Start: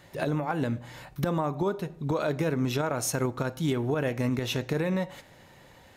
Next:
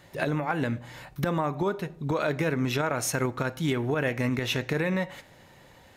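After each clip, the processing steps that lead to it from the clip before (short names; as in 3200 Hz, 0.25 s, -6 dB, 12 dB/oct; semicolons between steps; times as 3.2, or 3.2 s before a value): dynamic EQ 2000 Hz, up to +7 dB, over -49 dBFS, Q 1.2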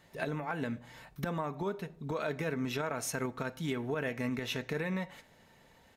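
comb 4.5 ms, depth 33%; gain -8 dB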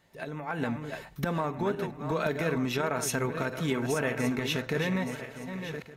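regenerating reverse delay 0.584 s, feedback 53%, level -8 dB; AGC gain up to 9 dB; gain -4 dB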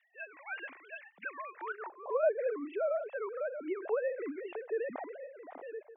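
sine-wave speech; band-pass sweep 2200 Hz -> 670 Hz, 1.53–2.11; gain +1 dB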